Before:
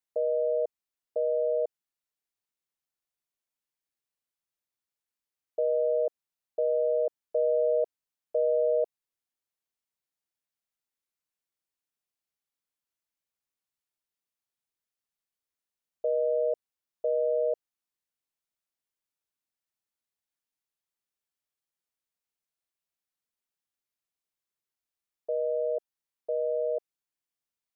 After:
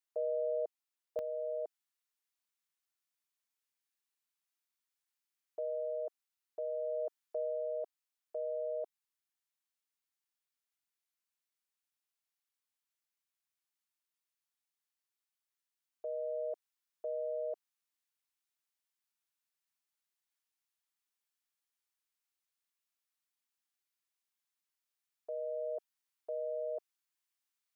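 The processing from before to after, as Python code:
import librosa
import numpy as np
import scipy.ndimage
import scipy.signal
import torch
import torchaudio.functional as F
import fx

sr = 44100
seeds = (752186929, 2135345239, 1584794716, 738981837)

y = scipy.signal.sosfilt(scipy.signal.butter(2, 360.0, 'highpass', fs=sr, output='sos'), x)
y = fx.peak_eq(y, sr, hz=520.0, db=fx.steps((0.0, -6.5), (1.19, -14.5)), octaves=0.76)
y = fx.rider(y, sr, range_db=3, speed_s=0.5)
y = F.gain(torch.from_numpy(y), 1.5).numpy()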